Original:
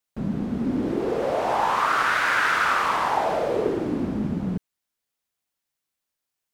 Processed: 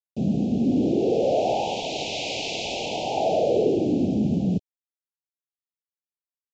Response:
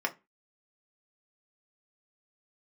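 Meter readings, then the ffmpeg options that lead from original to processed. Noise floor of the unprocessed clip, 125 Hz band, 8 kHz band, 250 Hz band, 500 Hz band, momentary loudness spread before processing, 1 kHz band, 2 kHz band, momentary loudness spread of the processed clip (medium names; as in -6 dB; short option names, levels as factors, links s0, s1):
-84 dBFS, +3.5 dB, +2.0 dB, +3.5 dB, +3.5 dB, 8 LU, -7.0 dB, -13.5 dB, 6 LU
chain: -af "highpass=f=80:w=0.5412,highpass=f=80:w=1.3066,asoftclip=type=tanh:threshold=0.158,acrusher=bits=8:mix=0:aa=0.000001,asuperstop=centerf=1400:order=12:qfactor=0.8,aresample=16000,aresample=44100,volume=1.68"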